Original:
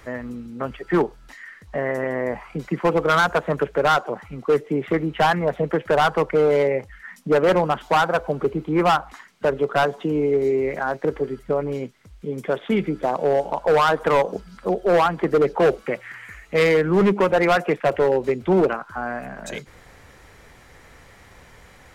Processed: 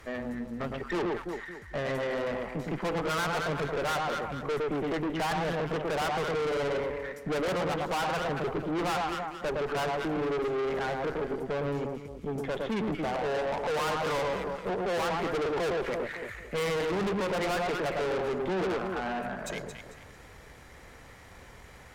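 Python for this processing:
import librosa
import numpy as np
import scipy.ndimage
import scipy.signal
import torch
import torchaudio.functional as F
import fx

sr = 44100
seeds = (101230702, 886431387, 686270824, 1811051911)

y = fx.echo_alternate(x, sr, ms=112, hz=1200.0, feedback_pct=57, wet_db=-4.0)
y = fx.tube_stage(y, sr, drive_db=27.0, bias=0.55)
y = y * 10.0 ** (-1.0 / 20.0)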